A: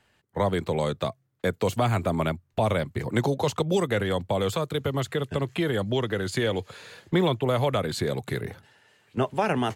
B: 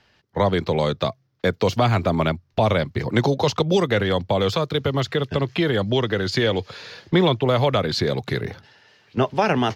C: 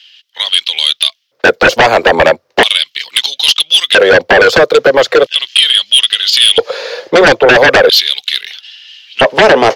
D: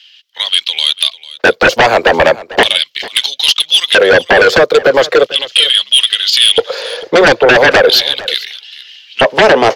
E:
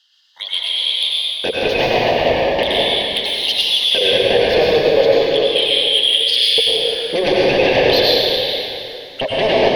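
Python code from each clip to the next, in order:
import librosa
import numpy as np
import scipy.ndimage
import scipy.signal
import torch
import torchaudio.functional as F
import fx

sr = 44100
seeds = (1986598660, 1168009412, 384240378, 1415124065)

y1 = fx.high_shelf_res(x, sr, hz=6700.0, db=-8.5, q=3.0)
y1 = F.gain(torch.from_numpy(y1), 5.0).numpy()
y2 = fx.filter_lfo_highpass(y1, sr, shape='square', hz=0.38, low_hz=520.0, high_hz=3100.0, q=5.6)
y2 = fx.fold_sine(y2, sr, drive_db=13, ceiling_db=1.5)
y2 = F.gain(torch.from_numpy(y2), -3.0).numpy()
y3 = y2 + 10.0 ** (-18.0 / 20.0) * np.pad(y2, (int(447 * sr / 1000.0), 0))[:len(y2)]
y3 = F.gain(torch.from_numpy(y3), -1.0).numpy()
y4 = fx.env_phaser(y3, sr, low_hz=390.0, high_hz=1400.0, full_db=-14.0)
y4 = fx.rev_plate(y4, sr, seeds[0], rt60_s=2.8, hf_ratio=0.75, predelay_ms=80, drr_db=-6.0)
y4 = F.gain(torch.from_numpy(y4), -9.5).numpy()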